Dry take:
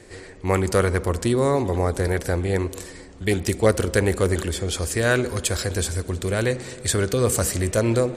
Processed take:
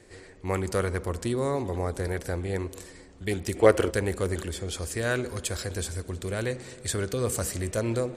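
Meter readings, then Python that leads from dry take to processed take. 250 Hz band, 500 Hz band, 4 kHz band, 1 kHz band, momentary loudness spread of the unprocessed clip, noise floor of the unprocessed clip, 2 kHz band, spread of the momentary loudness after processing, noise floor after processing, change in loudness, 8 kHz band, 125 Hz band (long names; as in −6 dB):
−7.0 dB, −5.5 dB, −7.5 dB, −6.0 dB, 6 LU, −42 dBFS, −7.0 dB, 9 LU, −49 dBFS, −6.5 dB, −7.5 dB, −7.5 dB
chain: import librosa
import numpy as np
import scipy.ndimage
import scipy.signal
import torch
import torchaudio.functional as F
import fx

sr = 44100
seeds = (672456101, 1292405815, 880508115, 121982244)

y = fx.spec_box(x, sr, start_s=3.56, length_s=0.35, low_hz=270.0, high_hz=3400.0, gain_db=8)
y = y * librosa.db_to_amplitude(-7.5)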